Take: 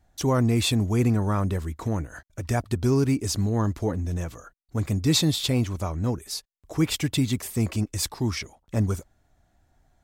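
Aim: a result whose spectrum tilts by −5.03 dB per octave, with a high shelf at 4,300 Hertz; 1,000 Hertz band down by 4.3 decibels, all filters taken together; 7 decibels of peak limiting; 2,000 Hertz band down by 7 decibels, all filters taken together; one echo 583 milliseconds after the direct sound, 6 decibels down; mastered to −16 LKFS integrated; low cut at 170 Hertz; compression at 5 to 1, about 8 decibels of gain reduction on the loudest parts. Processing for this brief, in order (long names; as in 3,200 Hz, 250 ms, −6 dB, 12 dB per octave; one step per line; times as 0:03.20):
high-pass filter 170 Hz
parametric band 1,000 Hz −3.5 dB
parametric band 2,000 Hz −6.5 dB
high-shelf EQ 4,300 Hz −7 dB
downward compressor 5 to 1, threshold −28 dBFS
brickwall limiter −26 dBFS
single-tap delay 583 ms −6 dB
level +20.5 dB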